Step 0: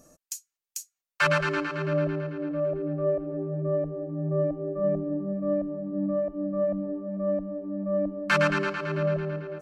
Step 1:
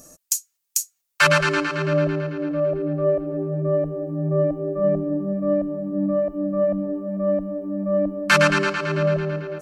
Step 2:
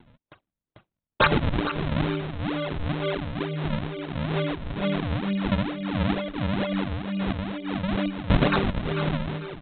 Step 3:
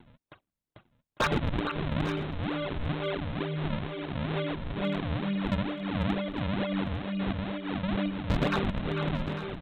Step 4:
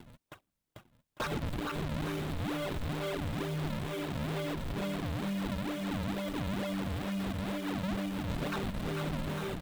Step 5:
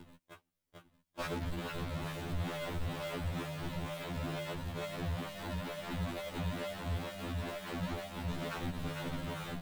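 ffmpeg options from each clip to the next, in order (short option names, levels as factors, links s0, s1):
-af "highshelf=f=4200:g=10.5,volume=1.88"
-af "aecho=1:1:4.3:0.59,aresample=8000,acrusher=samples=12:mix=1:aa=0.000001:lfo=1:lforange=19.2:lforate=2.2,aresample=44100,volume=0.708"
-filter_complex "[0:a]asplit=2[s0][s1];[s1]acompressor=threshold=0.0282:ratio=16,volume=0.841[s2];[s0][s2]amix=inputs=2:normalize=0,asoftclip=type=hard:threshold=0.188,aecho=1:1:850:0.237,volume=0.473"
-af "acompressor=threshold=0.0316:ratio=12,acrusher=bits=2:mode=log:mix=0:aa=0.000001,asoftclip=type=tanh:threshold=0.0266,volume=1.26"
-af "afftfilt=real='re*2*eq(mod(b,4),0)':imag='im*2*eq(mod(b,4),0)':win_size=2048:overlap=0.75"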